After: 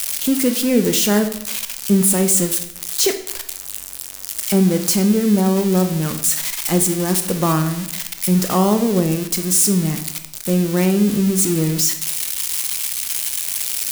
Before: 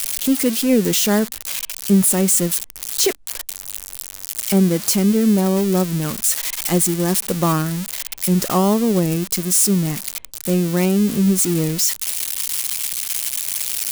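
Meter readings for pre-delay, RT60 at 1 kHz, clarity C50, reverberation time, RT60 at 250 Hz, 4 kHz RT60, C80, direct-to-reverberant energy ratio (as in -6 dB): 18 ms, 0.80 s, 10.0 dB, 0.85 s, 0.90 s, 0.65 s, 13.0 dB, 7.0 dB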